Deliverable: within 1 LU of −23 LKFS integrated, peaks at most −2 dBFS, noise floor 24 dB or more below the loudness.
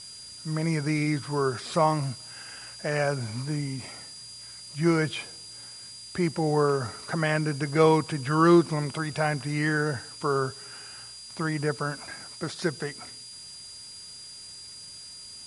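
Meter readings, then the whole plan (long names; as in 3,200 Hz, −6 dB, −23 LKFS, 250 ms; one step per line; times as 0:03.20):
interfering tone 4,800 Hz; level of the tone −43 dBFS; background noise floor −44 dBFS; target noise floor −51 dBFS; integrated loudness −27.0 LKFS; sample peak −7.0 dBFS; target loudness −23.0 LKFS
→ notch filter 4,800 Hz, Q 30
broadband denoise 7 dB, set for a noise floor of −44 dBFS
level +4 dB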